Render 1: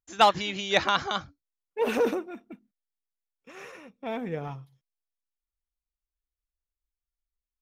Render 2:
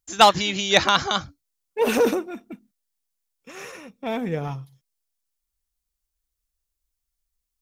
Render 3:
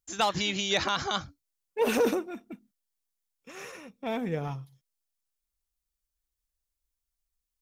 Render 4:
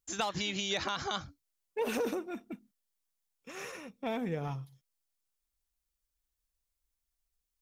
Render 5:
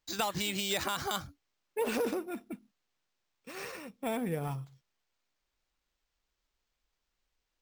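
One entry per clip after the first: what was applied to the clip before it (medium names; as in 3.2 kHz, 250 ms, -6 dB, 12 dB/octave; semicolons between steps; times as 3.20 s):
tone controls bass +3 dB, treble +8 dB; trim +5 dB
peak limiter -11.5 dBFS, peak gain reduction 9 dB; trim -4.5 dB
compression 3:1, threshold -32 dBFS, peak gain reduction 9 dB
careless resampling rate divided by 4×, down none, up hold; trim +1 dB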